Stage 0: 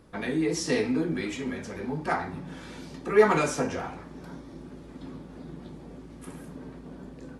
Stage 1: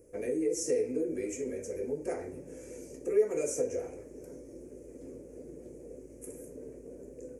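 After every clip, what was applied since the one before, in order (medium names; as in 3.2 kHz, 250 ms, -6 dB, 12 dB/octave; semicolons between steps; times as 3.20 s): FFT filter 120 Hz 0 dB, 170 Hz -10 dB, 500 Hz +14 dB, 820 Hz -12 dB, 1.2 kHz -16 dB, 2.4 kHz -3 dB, 3.7 kHz -24 dB, 6.4 kHz +11 dB; compression 2:1, threshold -23 dBFS, peak gain reduction 11.5 dB; trim -7 dB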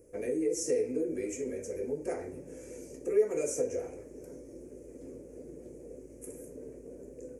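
no audible change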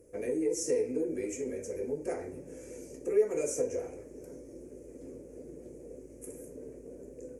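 Chebyshev shaper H 6 -42 dB, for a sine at -16 dBFS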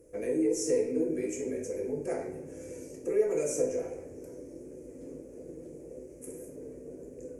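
simulated room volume 240 m³, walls mixed, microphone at 0.68 m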